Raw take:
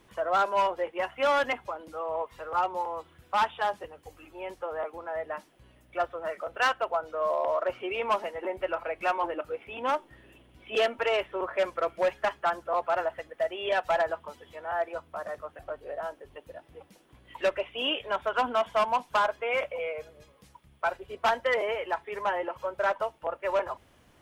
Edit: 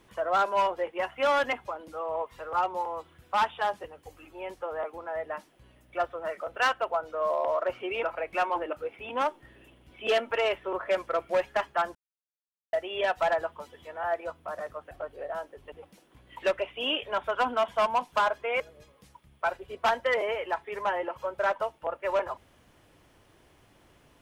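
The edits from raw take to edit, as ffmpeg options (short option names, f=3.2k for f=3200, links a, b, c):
-filter_complex "[0:a]asplit=6[a][b][c][d][e][f];[a]atrim=end=8.032[g];[b]atrim=start=8.708:end=12.63,asetpts=PTS-STARTPTS,afade=t=out:st=3.918:d=0.004:c=hsin[h];[c]atrim=start=12.63:end=13.41,asetpts=PTS-STARTPTS,volume=0[i];[d]atrim=start=13.41:end=16.402,asetpts=PTS-STARTPTS,afade=t=in:d=0.004:c=hsin[j];[e]atrim=start=16.698:end=19.582[k];[f]atrim=start=19.998[l];[h][i][j]concat=n=3:v=0:a=1[m];[g][m]acrossfade=d=0.004:c1=hsin:c2=hsin[n];[n][k]acrossfade=d=0.004:c1=hsin:c2=hsin[o];[o][l]acrossfade=d=0.004:c1=hsin:c2=hsin"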